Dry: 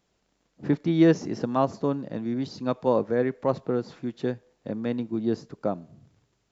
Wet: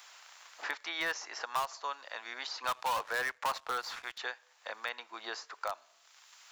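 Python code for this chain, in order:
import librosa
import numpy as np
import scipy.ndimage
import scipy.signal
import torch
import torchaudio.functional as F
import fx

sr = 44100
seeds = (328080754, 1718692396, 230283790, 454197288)

p1 = scipy.signal.sosfilt(scipy.signal.butter(4, 970.0, 'highpass', fs=sr, output='sos'), x)
p2 = fx.leveller(p1, sr, passes=2, at=(2.64, 4.18))
p3 = (np.mod(10.0 ** (27.0 / 20.0) * p2 + 1.0, 2.0) - 1.0) / 10.0 ** (27.0 / 20.0)
p4 = p2 + (p3 * librosa.db_to_amplitude(-9.5))
y = fx.band_squash(p4, sr, depth_pct=70)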